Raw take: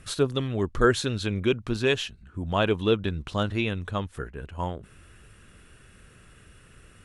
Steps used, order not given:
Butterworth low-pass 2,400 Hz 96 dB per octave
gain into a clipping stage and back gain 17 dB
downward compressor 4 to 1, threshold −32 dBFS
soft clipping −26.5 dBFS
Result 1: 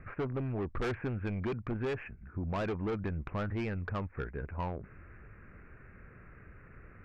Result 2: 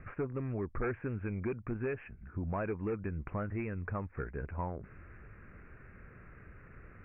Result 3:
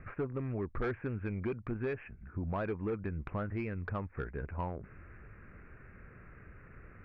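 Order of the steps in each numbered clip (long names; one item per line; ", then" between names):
gain into a clipping stage and back, then Butterworth low-pass, then soft clipping, then downward compressor
gain into a clipping stage and back, then downward compressor, then soft clipping, then Butterworth low-pass
gain into a clipping stage and back, then downward compressor, then Butterworth low-pass, then soft clipping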